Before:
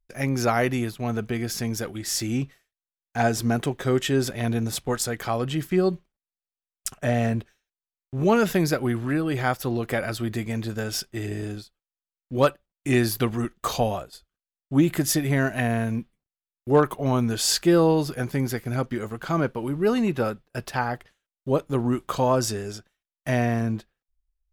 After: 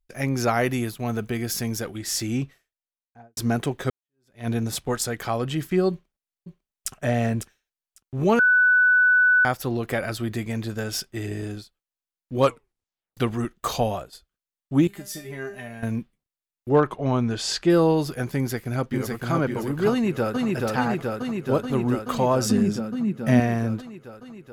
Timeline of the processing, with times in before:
0:00.65–0:01.77: high-shelf EQ 11,000 Hz +10.5 dB
0:02.40–0:03.37: fade out and dull
0:03.90–0:04.48: fade in exponential
0:05.91–0:06.92: delay throw 550 ms, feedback 15%, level −8 dB
0:08.39–0:09.45: beep over 1,490 Hz −14 dBFS
0:12.41: tape stop 0.76 s
0:14.87–0:15.83: tuned comb filter 200 Hz, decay 0.29 s, mix 90%
0:16.69–0:17.70: high-frequency loss of the air 82 metres
0:18.37–0:19.33: delay throw 560 ms, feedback 40%, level −2.5 dB
0:19.91–0:20.47: delay throw 430 ms, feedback 80%, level −1.5 dB
0:22.45–0:23.40: parametric band 200 Hz +15 dB 0.87 octaves

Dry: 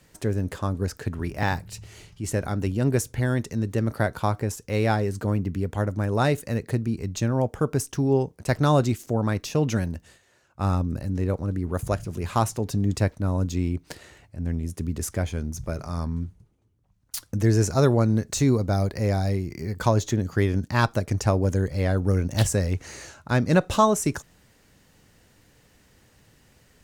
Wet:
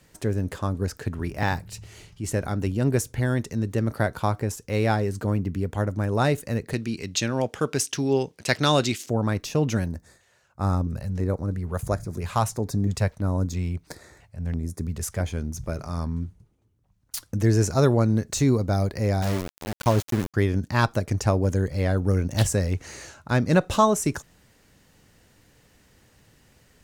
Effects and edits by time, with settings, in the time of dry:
0:06.73–0:09.09: meter weighting curve D
0:09.87–0:15.26: auto-filter notch square 1.5 Hz 300–2,900 Hz
0:19.22–0:20.34: centre clipping without the shift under −25 dBFS

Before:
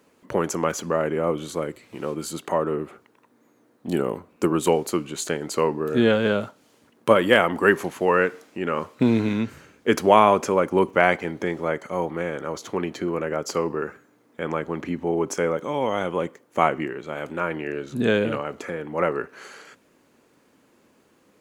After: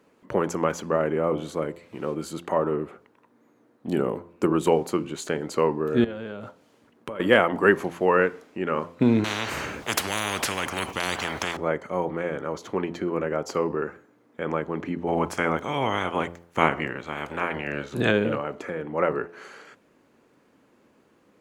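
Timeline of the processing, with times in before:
0:06.04–0:07.20: downward compressor 20 to 1, threshold −29 dBFS
0:09.24–0:11.57: every bin compressed towards the loudest bin 10 to 1
0:15.07–0:18.10: ceiling on every frequency bin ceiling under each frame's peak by 17 dB
whole clip: high-shelf EQ 3,800 Hz −9 dB; hum removal 85.73 Hz, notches 12

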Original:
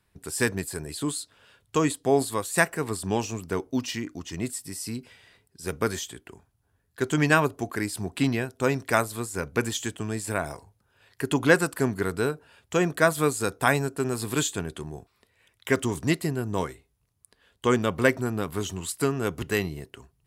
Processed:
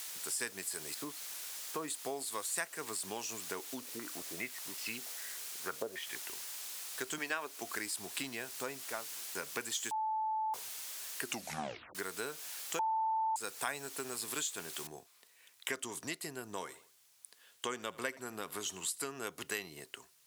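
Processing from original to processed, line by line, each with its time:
0:00.94–0:01.88: low-pass filter 1,500 Hz
0:03.80–0:06.20: low-pass on a step sequencer 5.1 Hz 460–2,800 Hz
0:07.18–0:07.62: band-pass filter 270–5,200 Hz
0:08.31–0:09.35: fade out and dull
0:09.91–0:10.54: beep over 873 Hz −23.5 dBFS
0:11.22: tape stop 0.73 s
0:12.79–0:13.36: beep over 885 Hz −12 dBFS
0:14.87: noise floor change −45 dB −68 dB
0:16.57–0:19.08: repeating echo 80 ms, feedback 39%, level −22.5 dB
whole clip: high-shelf EQ 4,900 Hz +11 dB; downward compressor 6 to 1, threshold −29 dBFS; meter weighting curve A; level −4 dB

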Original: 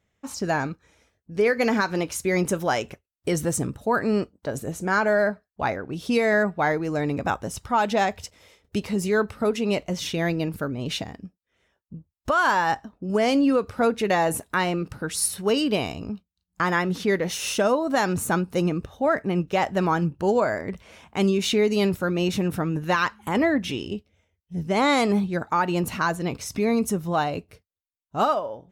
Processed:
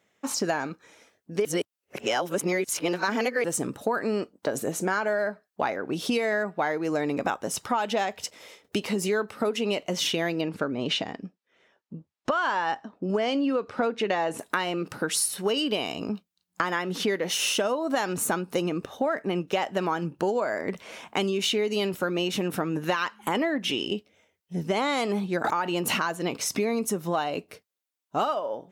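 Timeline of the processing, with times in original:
0:01.45–0:03.44: reverse
0:10.41–0:14.39: high-frequency loss of the air 86 metres
0:25.44–0:26.09: background raised ahead of every attack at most 34 dB per second
whole clip: high-pass filter 250 Hz 12 dB per octave; dynamic equaliser 3,000 Hz, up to +7 dB, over −50 dBFS, Q 7.4; downward compressor 6 to 1, threshold −30 dBFS; level +6.5 dB

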